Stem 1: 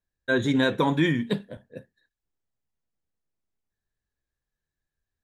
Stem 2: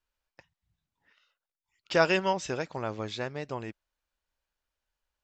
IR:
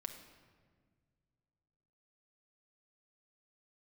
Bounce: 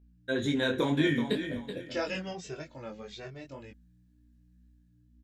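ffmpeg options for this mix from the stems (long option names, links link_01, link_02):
-filter_complex "[0:a]dynaudnorm=framelen=110:gausssize=9:maxgain=7dB,equalizer=frequency=160:width_type=o:width=0.77:gain=-5.5,acompressor=threshold=-21dB:ratio=2,volume=-1.5dB,asplit=2[link_01][link_02];[link_02]volume=-9.5dB[link_03];[1:a]aeval=exprs='val(0)+0.00126*(sin(2*PI*60*n/s)+sin(2*PI*2*60*n/s)/2+sin(2*PI*3*60*n/s)/3+sin(2*PI*4*60*n/s)/4+sin(2*PI*5*60*n/s)/5)':channel_layout=same,asplit=2[link_04][link_05];[link_05]adelay=2.1,afreqshift=-1.3[link_06];[link_04][link_06]amix=inputs=2:normalize=1,volume=-1dB[link_07];[link_03]aecho=0:1:379|758|1137|1516:1|0.3|0.09|0.027[link_08];[link_01][link_07][link_08]amix=inputs=3:normalize=0,equalizer=frequency=1000:width=1.5:gain=-7,aeval=exprs='val(0)+0.001*(sin(2*PI*60*n/s)+sin(2*PI*2*60*n/s)/2+sin(2*PI*3*60*n/s)/3+sin(2*PI*4*60*n/s)/4+sin(2*PI*5*60*n/s)/5)':channel_layout=same,flanger=delay=20:depth=3:speed=1.9"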